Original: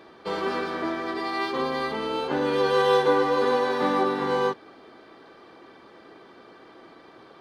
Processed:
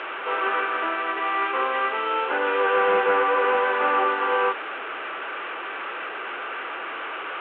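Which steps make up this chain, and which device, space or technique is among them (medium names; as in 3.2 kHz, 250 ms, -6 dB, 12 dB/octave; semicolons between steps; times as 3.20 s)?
digital answering machine (band-pass 360–3000 Hz; one-bit delta coder 16 kbps, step -31.5 dBFS; cabinet simulation 480–4000 Hz, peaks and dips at 690 Hz -3 dB, 1.4 kHz +8 dB, 2.7 kHz +5 dB); trim +4.5 dB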